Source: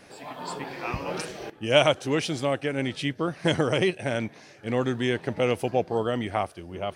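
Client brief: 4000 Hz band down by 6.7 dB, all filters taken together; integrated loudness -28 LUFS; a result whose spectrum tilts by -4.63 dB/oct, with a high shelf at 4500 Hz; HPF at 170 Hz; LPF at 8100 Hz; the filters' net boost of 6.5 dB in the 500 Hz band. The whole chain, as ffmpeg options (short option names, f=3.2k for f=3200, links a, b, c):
-af "highpass=170,lowpass=8.1k,equalizer=f=500:t=o:g=8,equalizer=f=4k:t=o:g=-8.5,highshelf=f=4.5k:g=-3.5,volume=-5.5dB"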